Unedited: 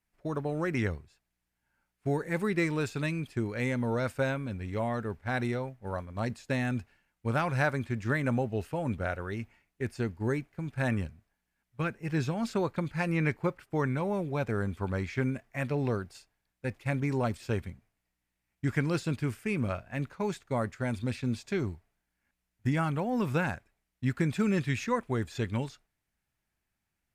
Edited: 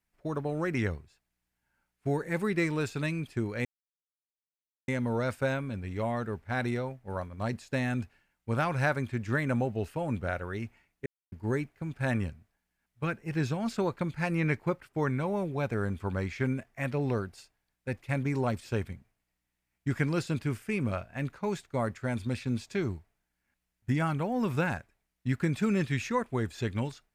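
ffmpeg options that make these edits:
ffmpeg -i in.wav -filter_complex "[0:a]asplit=4[link_01][link_02][link_03][link_04];[link_01]atrim=end=3.65,asetpts=PTS-STARTPTS,afade=type=out:start_time=3.646:duration=0.004:curve=hsin,apad=pad_dur=1.23[link_05];[link_02]atrim=start=3.65:end=9.83,asetpts=PTS-STARTPTS,afade=type=in:duration=0.004:curve=hsin,afade=type=out:start_time=6.176:duration=0.004:curve=hsin[link_06];[link_03]atrim=start=9.83:end=10.09,asetpts=PTS-STARTPTS,volume=0[link_07];[link_04]atrim=start=10.09,asetpts=PTS-STARTPTS,afade=type=in:duration=0.004:curve=hsin[link_08];[link_05][link_06][link_07][link_08]concat=n=4:v=0:a=1" out.wav

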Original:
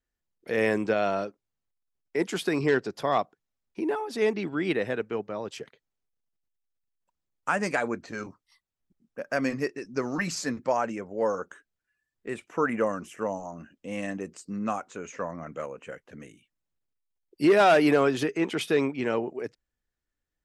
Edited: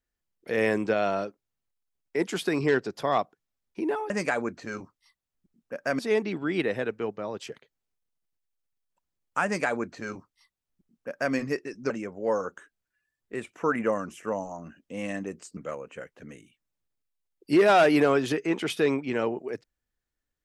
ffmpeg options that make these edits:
ffmpeg -i in.wav -filter_complex "[0:a]asplit=5[link_01][link_02][link_03][link_04][link_05];[link_01]atrim=end=4.102[link_06];[link_02]atrim=start=7.558:end=9.452[link_07];[link_03]atrim=start=4.098:end=10.012[link_08];[link_04]atrim=start=10.838:end=14.512[link_09];[link_05]atrim=start=15.478[link_10];[link_06][link_07]acrossfade=duration=0.004:curve1=hsin:curve2=hsin[link_11];[link_11][link_08]acrossfade=duration=0.004:curve1=hsin:curve2=hsin[link_12];[link_12][link_09]acrossfade=duration=0.004:curve1=hsin:curve2=hsin[link_13];[link_13][link_10]acrossfade=duration=0.004:curve1=hsin:curve2=hsin" out.wav

